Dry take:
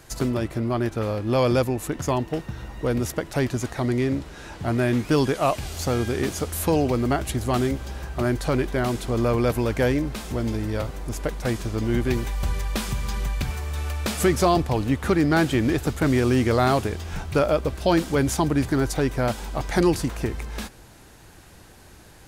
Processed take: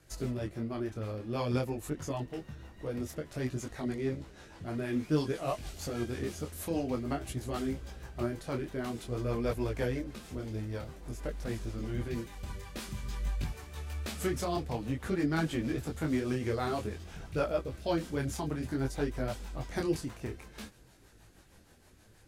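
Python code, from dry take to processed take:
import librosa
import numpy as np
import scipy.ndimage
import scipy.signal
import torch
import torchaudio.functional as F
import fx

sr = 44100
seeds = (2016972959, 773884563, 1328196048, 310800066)

y = fx.rotary(x, sr, hz=6.3)
y = fx.detune_double(y, sr, cents=18)
y = F.gain(torch.from_numpy(y), -6.0).numpy()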